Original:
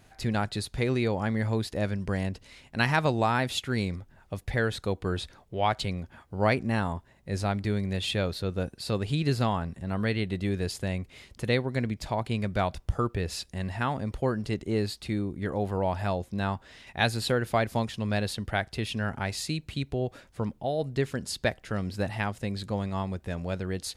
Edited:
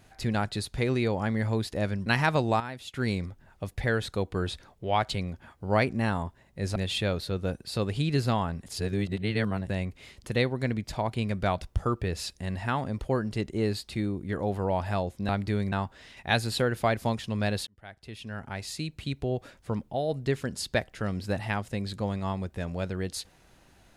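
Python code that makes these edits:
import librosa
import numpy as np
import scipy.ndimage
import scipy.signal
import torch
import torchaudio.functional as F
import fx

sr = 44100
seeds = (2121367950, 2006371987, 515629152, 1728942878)

y = fx.edit(x, sr, fx.cut(start_s=2.06, length_s=0.7),
    fx.clip_gain(start_s=3.3, length_s=0.34, db=-11.5),
    fx.move(start_s=7.46, length_s=0.43, to_s=16.42),
    fx.reverse_span(start_s=9.79, length_s=1.03),
    fx.fade_in_span(start_s=18.37, length_s=1.59), tone=tone)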